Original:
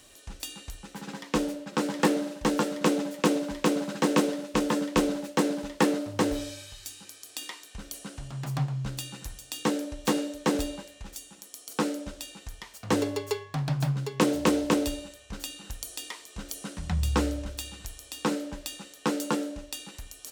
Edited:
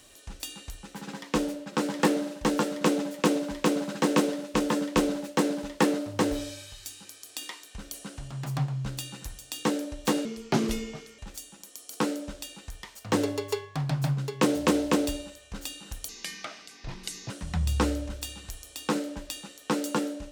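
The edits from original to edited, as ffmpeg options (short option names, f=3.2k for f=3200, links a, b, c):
-filter_complex "[0:a]asplit=5[a][b][c][d][e];[a]atrim=end=10.254[f];[b]atrim=start=10.25:end=10.97,asetpts=PTS-STARTPTS,asetrate=33957,aresample=44100,atrim=end_sample=41236,asetpts=PTS-STARTPTS[g];[c]atrim=start=10.966:end=15.874[h];[d]atrim=start=15.87:end=16.66,asetpts=PTS-STARTPTS,asetrate=28665,aresample=44100,atrim=end_sample=53598,asetpts=PTS-STARTPTS[i];[e]atrim=start=16.656[j];[f][g]acrossfade=d=0.004:c1=hsin:c2=hsin[k];[k][h]acrossfade=d=0.004:c1=hsin:c2=hsin[l];[l][i]acrossfade=d=0.004:c1=hsin:c2=hsin[m];[m][j]acrossfade=d=0.004:c1=hsin:c2=hsin"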